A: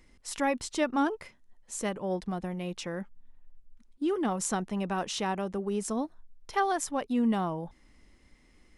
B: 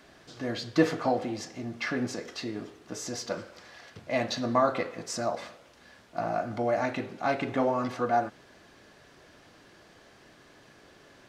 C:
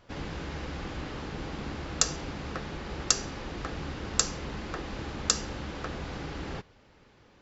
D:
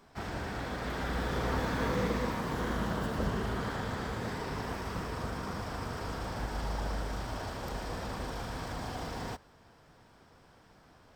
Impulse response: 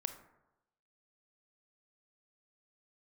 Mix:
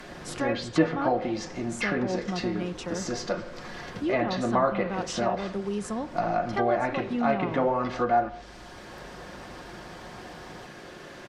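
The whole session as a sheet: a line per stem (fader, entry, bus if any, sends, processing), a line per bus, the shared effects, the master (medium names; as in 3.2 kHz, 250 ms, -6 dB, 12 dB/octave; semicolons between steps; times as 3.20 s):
-6.5 dB, 0.00 s, send -3.5 dB, none
-1.0 dB, 0.00 s, send -5 dB, none
-14.5 dB, 0.00 s, no send, low-pass 1.9 kHz 12 dB/octave
-14.5 dB, 1.30 s, no send, peak limiter -27.5 dBFS, peak gain reduction 8 dB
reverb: on, RT60 0.95 s, pre-delay 23 ms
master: low-pass that closes with the level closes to 2.3 kHz, closed at -21 dBFS; comb 5.6 ms, depth 33%; three bands compressed up and down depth 40%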